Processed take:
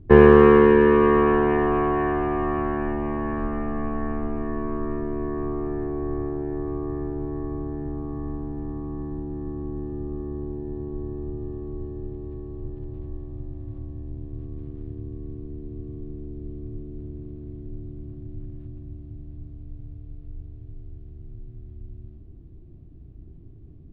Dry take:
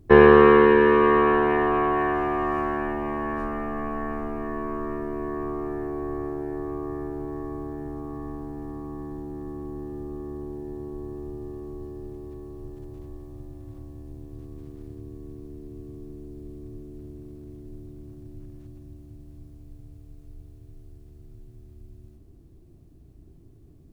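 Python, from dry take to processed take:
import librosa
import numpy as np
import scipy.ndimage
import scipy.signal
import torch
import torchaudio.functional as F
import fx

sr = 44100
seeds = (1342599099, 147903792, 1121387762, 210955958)

p1 = scipy.signal.sosfilt(scipy.signal.butter(4, 3600.0, 'lowpass', fs=sr, output='sos'), x)
p2 = fx.low_shelf(p1, sr, hz=340.0, db=10.5)
p3 = np.clip(10.0 ** (5.0 / 20.0) * p2, -1.0, 1.0) / 10.0 ** (5.0 / 20.0)
p4 = p2 + (p3 * librosa.db_to_amplitude(-12.0))
y = p4 * librosa.db_to_amplitude(-5.0)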